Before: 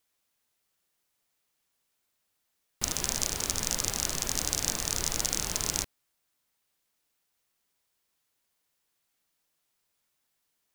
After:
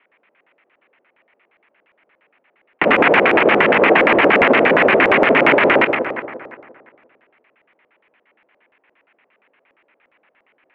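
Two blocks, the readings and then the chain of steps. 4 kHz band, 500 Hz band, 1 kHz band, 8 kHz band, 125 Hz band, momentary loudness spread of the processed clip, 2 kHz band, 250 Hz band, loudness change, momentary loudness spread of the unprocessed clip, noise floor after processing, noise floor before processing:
+7.0 dB, +30.0 dB, +26.0 dB, under -30 dB, +9.0 dB, 7 LU, +28.5 dB, +24.5 dB, +16.5 dB, 3 LU, -66 dBFS, -79 dBFS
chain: notches 60/120/180/240/300/360/420/480/540 Hz; sample leveller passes 2; in parallel at +2.5 dB: negative-ratio compressor -31 dBFS, ratio -0.5; on the sum: mistuned SSB -56 Hz 300–2900 Hz; on a send: split-band echo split 1900 Hz, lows 0.174 s, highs 0.101 s, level -8 dB; on the sum: LFO low-pass square 8.6 Hz 540–2200 Hz; maximiser +17 dB; gain -1 dB

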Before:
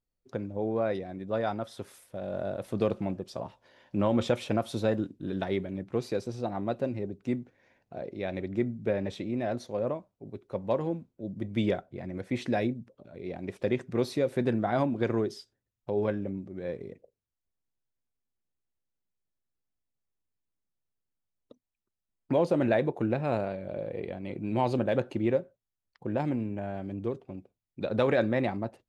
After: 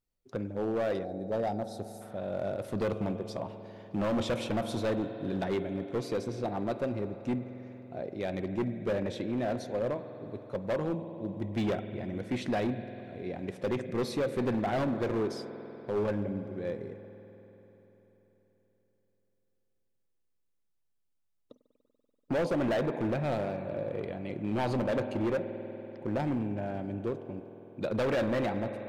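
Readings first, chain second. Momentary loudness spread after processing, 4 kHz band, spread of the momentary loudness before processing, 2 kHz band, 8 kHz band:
11 LU, 0.0 dB, 13 LU, -1.0 dB, n/a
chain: spring tank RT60 4 s, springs 48 ms, chirp 30 ms, DRR 10.5 dB; spectral gain 1.05–2.01, 920–3700 Hz -13 dB; overloaded stage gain 25.5 dB

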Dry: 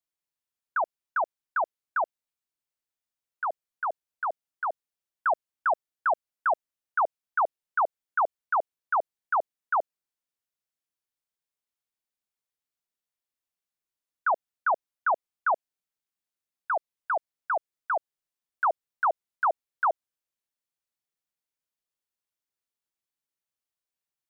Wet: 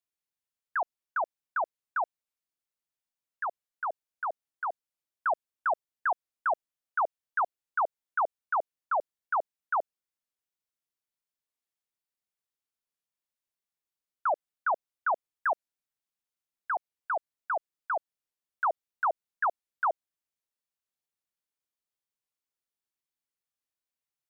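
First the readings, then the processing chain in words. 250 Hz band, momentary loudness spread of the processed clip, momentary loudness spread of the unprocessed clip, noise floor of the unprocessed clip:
n/a, 5 LU, 5 LU, under -85 dBFS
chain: record warp 45 rpm, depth 160 cents; gain -3 dB

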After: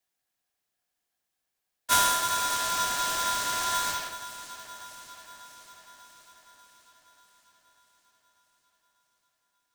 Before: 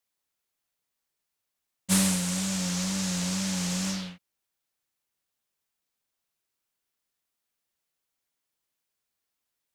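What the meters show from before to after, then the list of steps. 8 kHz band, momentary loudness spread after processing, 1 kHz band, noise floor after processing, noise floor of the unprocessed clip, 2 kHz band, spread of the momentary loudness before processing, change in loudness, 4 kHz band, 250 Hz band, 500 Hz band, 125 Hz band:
+0.5 dB, 22 LU, +15.5 dB, -83 dBFS, -84 dBFS, +6.5 dB, 10 LU, +1.0 dB, +3.5 dB, -20.0 dB, +1.5 dB, -19.0 dB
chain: bell 450 Hz +12.5 dB 0.44 oct; frequency shift +13 Hz; on a send: echo with dull and thin repeats by turns 0.296 s, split 1100 Hz, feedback 79%, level -12.5 dB; on the sum: polarity switched at an audio rate 1200 Hz

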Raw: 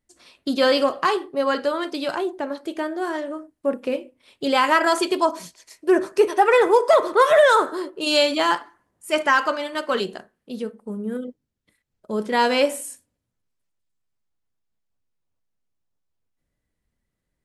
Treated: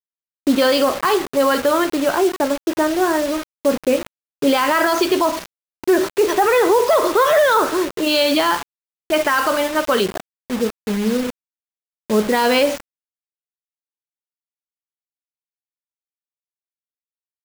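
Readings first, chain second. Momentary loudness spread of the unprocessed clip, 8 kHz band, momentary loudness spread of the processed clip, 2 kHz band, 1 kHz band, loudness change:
15 LU, +7.5 dB, 9 LU, +2.5 dB, +2.0 dB, +3.0 dB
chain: low-pass opened by the level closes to 400 Hz, open at -15 dBFS; steep low-pass 6700 Hz 96 dB/oct; limiter -16.5 dBFS, peak gain reduction 11 dB; requantised 6-bit, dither none; gain +9 dB

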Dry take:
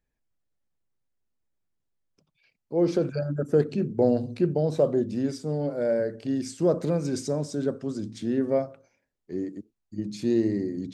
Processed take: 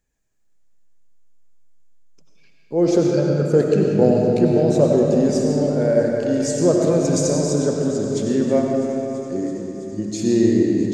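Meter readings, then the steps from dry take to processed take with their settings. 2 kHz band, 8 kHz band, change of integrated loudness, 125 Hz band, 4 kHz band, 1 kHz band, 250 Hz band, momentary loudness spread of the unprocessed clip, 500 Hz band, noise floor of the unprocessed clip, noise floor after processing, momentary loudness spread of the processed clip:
+8.5 dB, +15.5 dB, +8.5 dB, +8.5 dB, +10.0 dB, +8.5 dB, +9.0 dB, 10 LU, +8.5 dB, -81 dBFS, -54 dBFS, 10 LU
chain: bell 6900 Hz +12 dB 0.44 oct; thin delay 0.33 s, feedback 84%, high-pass 1900 Hz, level -19 dB; digital reverb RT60 3.5 s, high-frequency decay 0.6×, pre-delay 55 ms, DRR -1 dB; gain +5 dB

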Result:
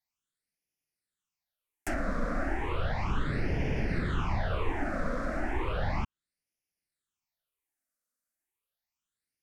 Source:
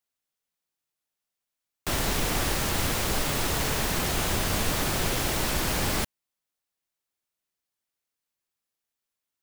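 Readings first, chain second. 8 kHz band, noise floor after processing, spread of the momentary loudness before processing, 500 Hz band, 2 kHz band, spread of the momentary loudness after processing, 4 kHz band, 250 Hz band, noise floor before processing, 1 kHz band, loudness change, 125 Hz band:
-25.5 dB, under -85 dBFS, 2 LU, -3.5 dB, -6.0 dB, 3 LU, -18.0 dB, -2.5 dB, under -85 dBFS, -4.5 dB, -7.0 dB, -2.0 dB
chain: treble ducked by the level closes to 1700 Hz, closed at -23 dBFS; phaser stages 8, 0.34 Hz, lowest notch 110–1200 Hz

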